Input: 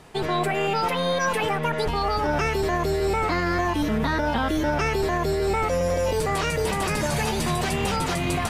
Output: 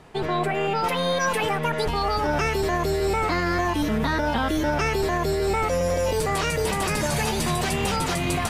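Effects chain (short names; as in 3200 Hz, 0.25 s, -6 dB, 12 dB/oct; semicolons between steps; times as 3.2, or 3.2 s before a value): high shelf 4300 Hz -7.5 dB, from 0.84 s +3 dB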